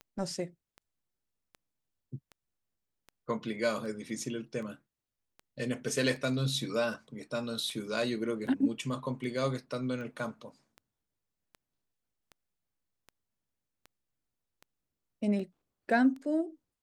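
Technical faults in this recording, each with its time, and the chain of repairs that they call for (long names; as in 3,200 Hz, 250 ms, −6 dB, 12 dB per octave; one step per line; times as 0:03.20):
scratch tick 78 rpm −33 dBFS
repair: click removal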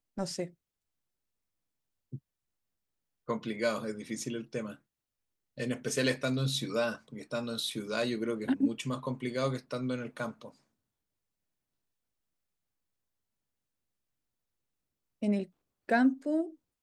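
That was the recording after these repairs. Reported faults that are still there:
none of them is left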